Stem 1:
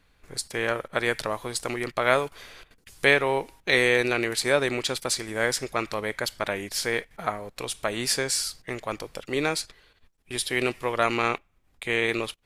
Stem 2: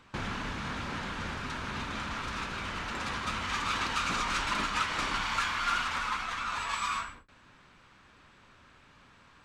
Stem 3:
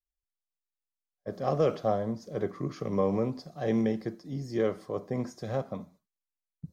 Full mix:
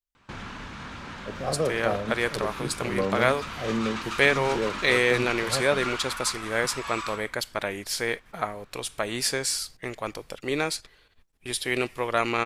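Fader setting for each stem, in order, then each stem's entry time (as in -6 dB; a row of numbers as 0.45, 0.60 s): -1.0, -3.0, -1.0 dB; 1.15, 0.15, 0.00 s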